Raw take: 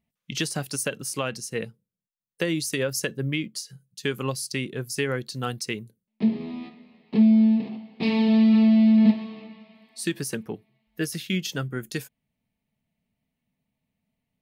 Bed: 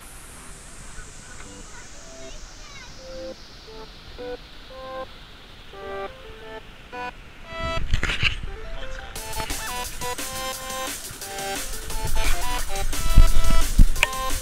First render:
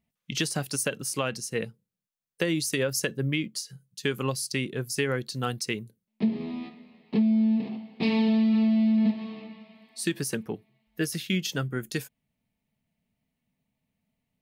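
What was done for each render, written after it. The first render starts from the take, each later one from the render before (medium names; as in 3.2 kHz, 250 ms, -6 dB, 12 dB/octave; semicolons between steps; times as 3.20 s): compression 6:1, threshold -20 dBFS, peak gain reduction 8 dB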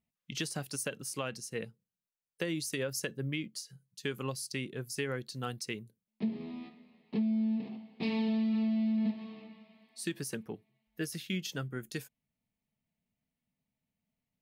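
trim -8 dB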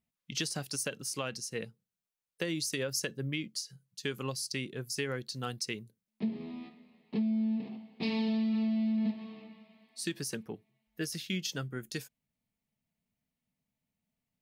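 dynamic bell 5.2 kHz, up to +6 dB, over -56 dBFS, Q 1.2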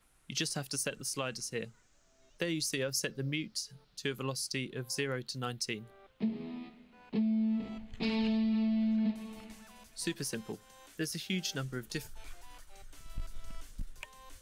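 add bed -27 dB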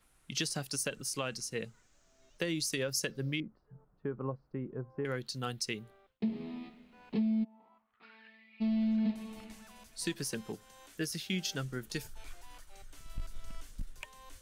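3.40–5.05 s: low-pass 1.2 kHz 24 dB/octave; 5.79–6.22 s: fade out; 7.43–8.60 s: band-pass filter 740 Hz -> 2.4 kHz, Q 8.8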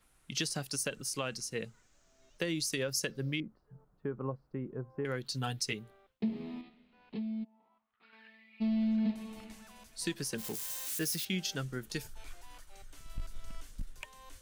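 5.24–5.73 s: comb 7 ms, depth 76%; 6.61–8.13 s: four-pole ladder low-pass 5.2 kHz, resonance 30%; 10.38–11.25 s: zero-crossing glitches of -32 dBFS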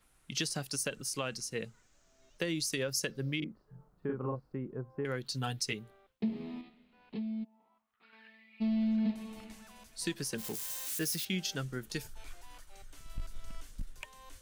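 3.38–4.56 s: doubling 40 ms -2 dB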